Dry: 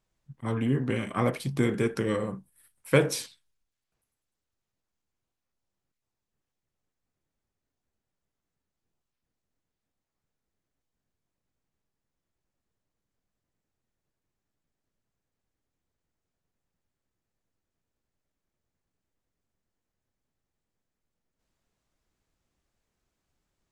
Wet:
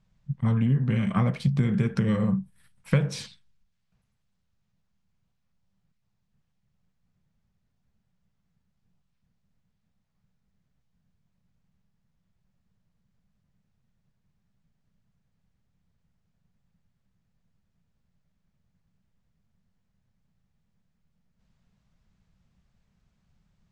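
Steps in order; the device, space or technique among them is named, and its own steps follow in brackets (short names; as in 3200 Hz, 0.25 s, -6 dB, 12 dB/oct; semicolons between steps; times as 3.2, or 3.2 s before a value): jukebox (LPF 5600 Hz 12 dB/oct; resonant low shelf 240 Hz +8 dB, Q 3; compressor 5:1, threshold -25 dBFS, peak gain reduction 14 dB); gain +4.5 dB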